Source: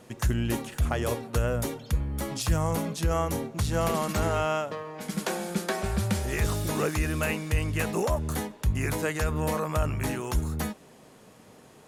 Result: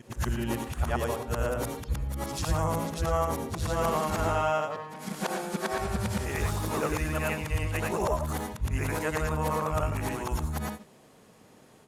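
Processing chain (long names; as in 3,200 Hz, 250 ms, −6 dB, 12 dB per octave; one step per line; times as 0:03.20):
every overlapping window played backwards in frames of 234 ms
dynamic equaliser 930 Hz, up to +6 dB, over −47 dBFS, Q 1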